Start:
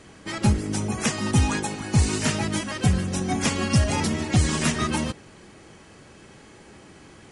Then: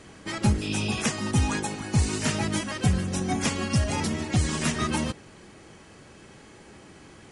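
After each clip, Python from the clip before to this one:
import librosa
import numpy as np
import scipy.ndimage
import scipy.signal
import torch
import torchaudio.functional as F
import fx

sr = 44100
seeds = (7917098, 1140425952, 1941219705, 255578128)

y = fx.spec_repair(x, sr, seeds[0], start_s=0.64, length_s=0.35, low_hz=2400.0, high_hz=5400.0, source='after')
y = fx.rider(y, sr, range_db=4, speed_s=0.5)
y = y * 10.0 ** (-2.5 / 20.0)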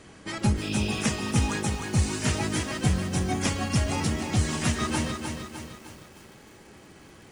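y = fx.echo_crushed(x, sr, ms=305, feedback_pct=55, bits=8, wet_db=-6)
y = y * 10.0 ** (-1.5 / 20.0)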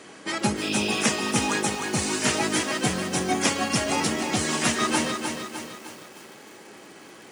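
y = scipy.signal.sosfilt(scipy.signal.butter(2, 270.0, 'highpass', fs=sr, output='sos'), x)
y = y * 10.0 ** (6.0 / 20.0)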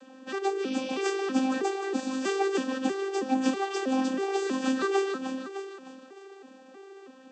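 y = fx.vocoder_arp(x, sr, chord='bare fifth', root=60, every_ms=321)
y = fx.notch(y, sr, hz=2100.0, q=7.4)
y = y * 10.0 ** (-2.0 / 20.0)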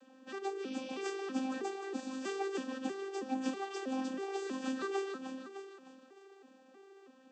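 y = fx.comb_fb(x, sr, f0_hz=240.0, decay_s=0.62, harmonics='odd', damping=0.0, mix_pct=50)
y = y * 10.0 ** (-4.0 / 20.0)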